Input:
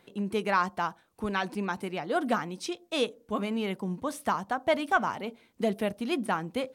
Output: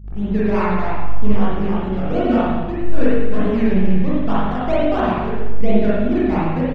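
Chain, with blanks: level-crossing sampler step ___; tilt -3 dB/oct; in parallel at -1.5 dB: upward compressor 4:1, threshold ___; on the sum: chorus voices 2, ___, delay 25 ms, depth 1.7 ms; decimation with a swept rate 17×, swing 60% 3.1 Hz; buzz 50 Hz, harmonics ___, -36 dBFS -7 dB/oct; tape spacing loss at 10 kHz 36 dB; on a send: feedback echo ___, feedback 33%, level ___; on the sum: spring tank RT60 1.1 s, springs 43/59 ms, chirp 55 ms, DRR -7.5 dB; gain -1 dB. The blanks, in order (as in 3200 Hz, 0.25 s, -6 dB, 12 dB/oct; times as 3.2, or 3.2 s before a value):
-37.5 dBFS, -38 dBFS, 0.7 Hz, 4, 0.11 s, -13 dB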